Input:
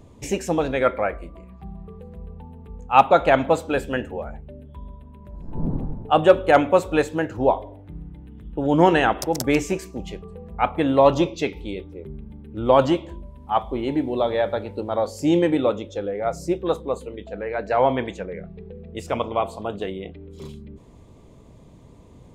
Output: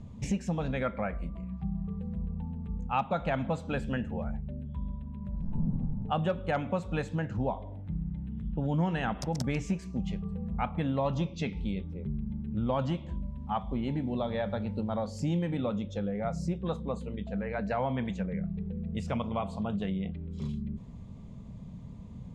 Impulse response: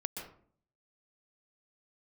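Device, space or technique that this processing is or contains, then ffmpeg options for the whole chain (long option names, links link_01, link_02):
jukebox: -af "lowpass=6700,lowshelf=frequency=260:width_type=q:width=3:gain=7.5,acompressor=threshold=-24dB:ratio=3,volume=-5dB"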